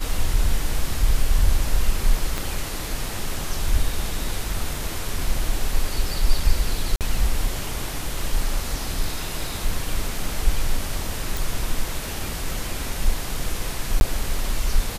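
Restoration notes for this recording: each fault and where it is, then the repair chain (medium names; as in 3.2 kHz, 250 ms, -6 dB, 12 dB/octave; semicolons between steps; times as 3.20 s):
2.38 s: pop
6.96–7.01 s: dropout 48 ms
11.37 s: pop
14.00–14.01 s: dropout 11 ms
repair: de-click; interpolate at 6.96 s, 48 ms; interpolate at 14.00 s, 11 ms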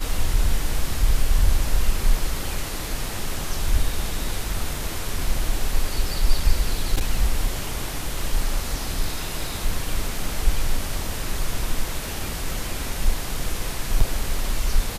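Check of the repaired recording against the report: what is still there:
2.38 s: pop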